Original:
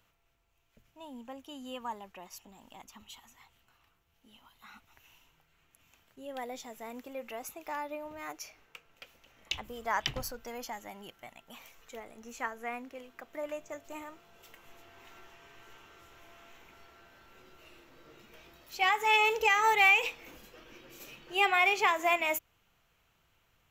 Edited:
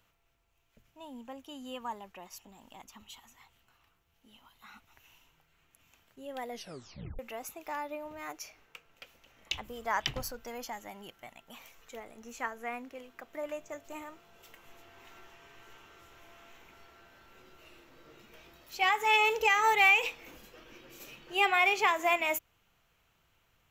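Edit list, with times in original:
6.49 tape stop 0.70 s

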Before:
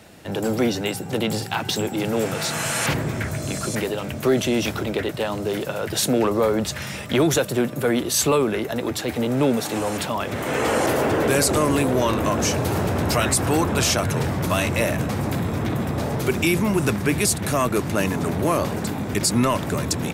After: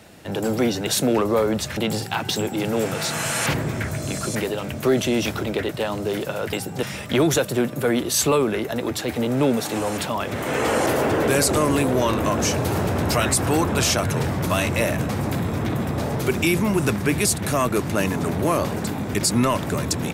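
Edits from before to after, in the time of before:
0.87–1.17 swap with 5.93–6.83

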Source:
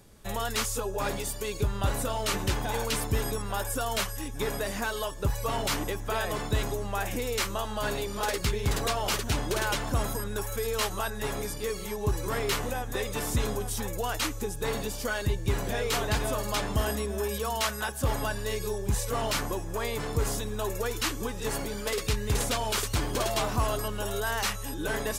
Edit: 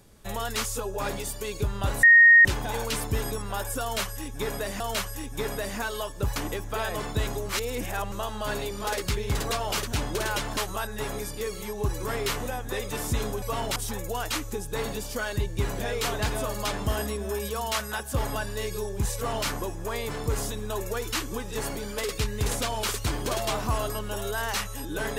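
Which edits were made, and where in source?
2.03–2.45 bleep 1860 Hz -10.5 dBFS
3.82–4.8 loop, 2 plays
5.38–5.72 move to 13.65
6.85–7.48 reverse
9.93–10.8 cut

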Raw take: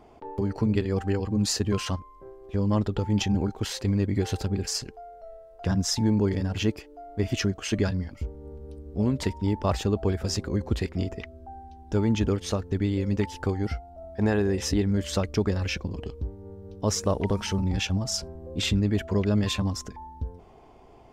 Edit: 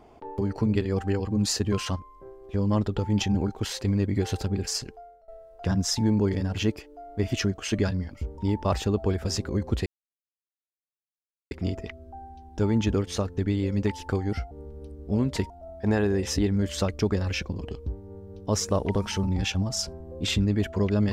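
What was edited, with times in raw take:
4.92–5.28 fade out, to -21 dB
8.38–9.37 move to 13.85
10.85 insert silence 1.65 s

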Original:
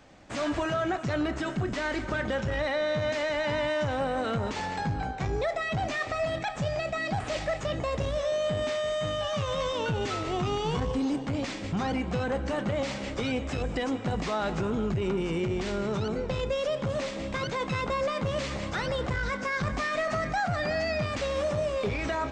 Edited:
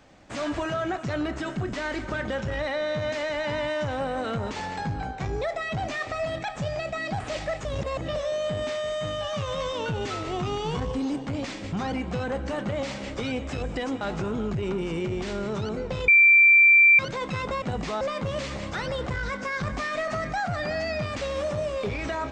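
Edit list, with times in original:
7.65–8.16 reverse
14.01–14.4 move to 18.01
16.47–17.38 bleep 2350 Hz -12 dBFS

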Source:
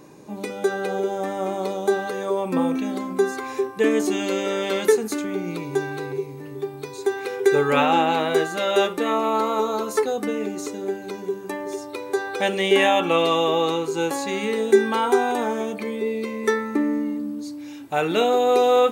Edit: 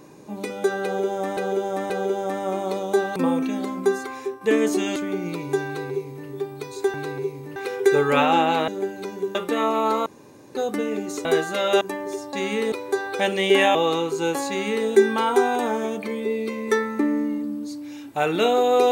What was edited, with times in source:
0.84–1.37 loop, 3 plays
2.1–2.49 cut
3.19–3.74 fade out linear, to -7.5 dB
4.29–5.18 cut
5.88–6.5 copy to 7.16
8.28–8.84 swap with 10.74–11.41
9.55–10.04 room tone
12.96–13.51 cut
14.24–14.63 copy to 11.93

